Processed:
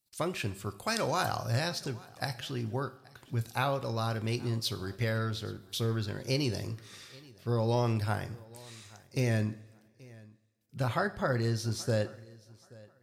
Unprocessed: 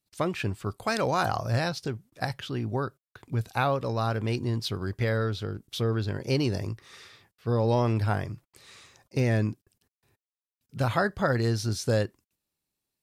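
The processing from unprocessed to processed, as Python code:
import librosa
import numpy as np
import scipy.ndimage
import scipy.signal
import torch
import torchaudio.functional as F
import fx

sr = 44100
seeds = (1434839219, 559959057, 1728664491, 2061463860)

y = fx.high_shelf(x, sr, hz=4000.0, db=fx.steps((0.0, 10.0), (9.42, 2.0)))
y = fx.echo_feedback(y, sr, ms=829, feedback_pct=21, wet_db=-23.0)
y = fx.rev_double_slope(y, sr, seeds[0], early_s=0.5, late_s=2.0, knee_db=-18, drr_db=10.5)
y = F.gain(torch.from_numpy(y), -5.5).numpy()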